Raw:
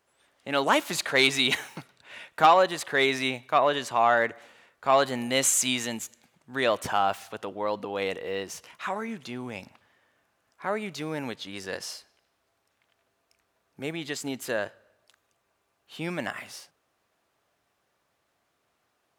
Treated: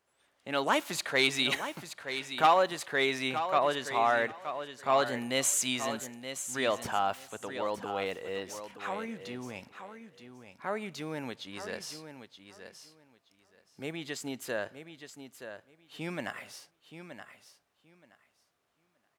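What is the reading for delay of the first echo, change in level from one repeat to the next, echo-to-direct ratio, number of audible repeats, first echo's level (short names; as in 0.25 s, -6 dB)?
0.924 s, -15.0 dB, -10.0 dB, 2, -10.0 dB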